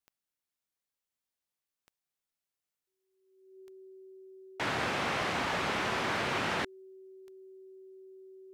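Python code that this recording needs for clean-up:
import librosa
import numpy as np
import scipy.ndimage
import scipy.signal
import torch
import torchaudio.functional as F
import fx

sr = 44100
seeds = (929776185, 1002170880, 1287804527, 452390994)

y = fx.fix_declick_ar(x, sr, threshold=10.0)
y = fx.notch(y, sr, hz=380.0, q=30.0)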